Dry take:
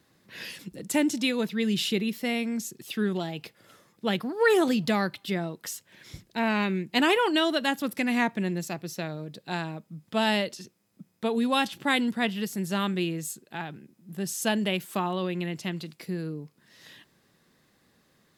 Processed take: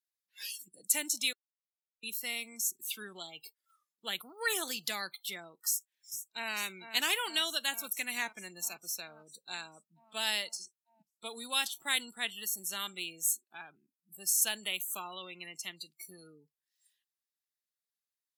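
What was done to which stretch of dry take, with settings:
0:01.33–0:02.03: silence
0:05.66–0:06.52: delay throw 450 ms, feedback 80%, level −9.5 dB
whole clip: noise reduction from a noise print of the clip's start 28 dB; first difference; level +5 dB

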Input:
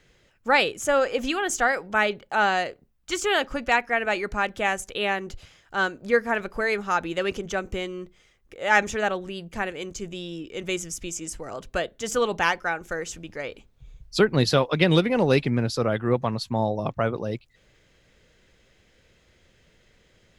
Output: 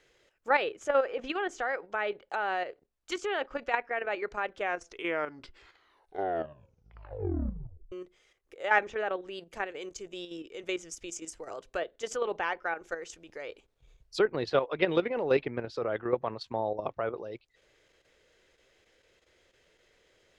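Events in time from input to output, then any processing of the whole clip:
0:04.47: tape stop 3.45 s
whole clip: treble cut that deepens with the level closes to 2,600 Hz, closed at −21.5 dBFS; low shelf with overshoot 280 Hz −9 dB, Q 1.5; output level in coarse steps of 9 dB; level −3.5 dB

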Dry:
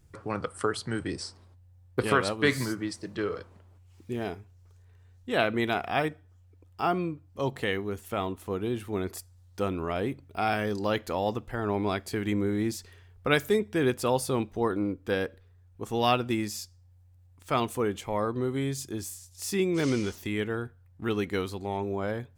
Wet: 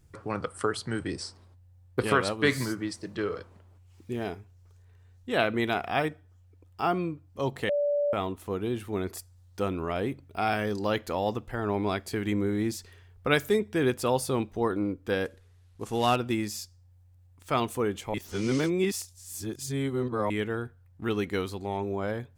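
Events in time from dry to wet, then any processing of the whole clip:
0:07.69–0:08.13: beep over 580 Hz −23 dBFS
0:15.25–0:16.16: variable-slope delta modulation 64 kbit/s
0:18.14–0:20.30: reverse

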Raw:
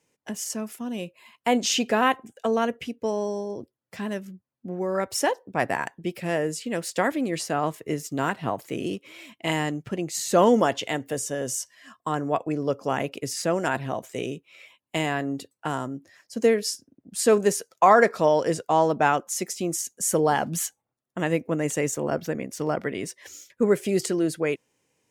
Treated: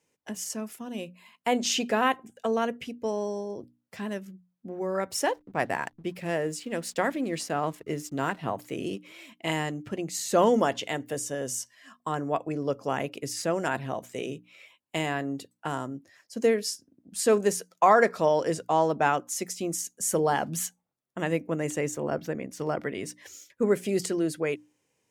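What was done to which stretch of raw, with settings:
0:05.16–0:08.39: slack as between gear wheels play −47 dBFS
0:21.70–0:22.59: high-shelf EQ 4,200 Hz −4.5 dB
whole clip: mains-hum notches 60/120/180/240/300 Hz; level −3 dB

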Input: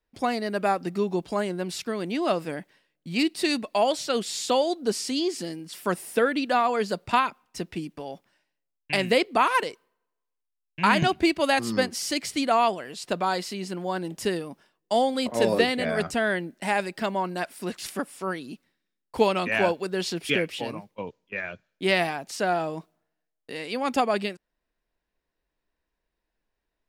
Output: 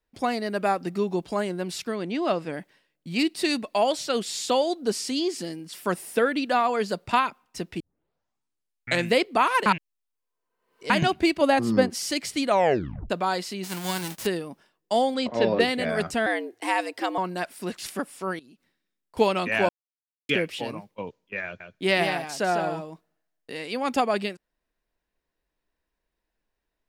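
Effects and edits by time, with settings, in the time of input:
0:01.95–0:02.54: high-frequency loss of the air 64 metres
0:07.80: tape start 1.32 s
0:09.66–0:10.90: reverse
0:11.41–0:11.90: tilt shelving filter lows +6 dB, about 1,200 Hz
0:12.47: tape stop 0.63 s
0:13.63–0:14.25: spectral envelope flattened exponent 0.3
0:15.14–0:15.59: low-pass filter 8,200 Hz → 3,300 Hz 24 dB per octave
0:16.26–0:17.18: frequency shifter +110 Hz
0:18.39–0:19.17: downward compressor, threshold −51 dBFS
0:19.69–0:20.29: silence
0:21.45–0:23.52: single-tap delay 151 ms −6.5 dB

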